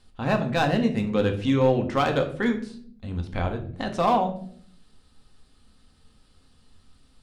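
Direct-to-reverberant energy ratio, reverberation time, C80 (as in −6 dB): 4.0 dB, 0.55 s, 14.5 dB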